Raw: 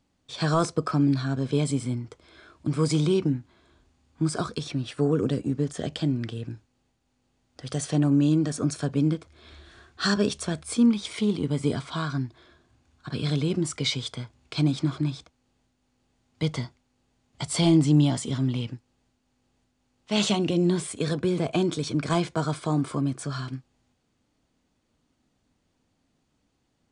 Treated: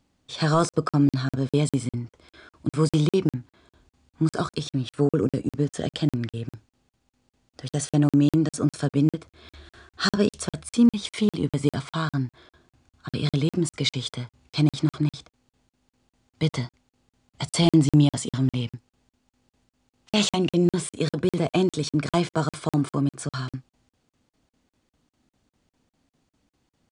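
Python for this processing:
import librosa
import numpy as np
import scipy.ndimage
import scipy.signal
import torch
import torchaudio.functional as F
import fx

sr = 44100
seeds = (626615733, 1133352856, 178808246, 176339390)

y = fx.buffer_crackle(x, sr, first_s=0.69, period_s=0.2, block=2048, kind='zero')
y = y * 10.0 ** (2.5 / 20.0)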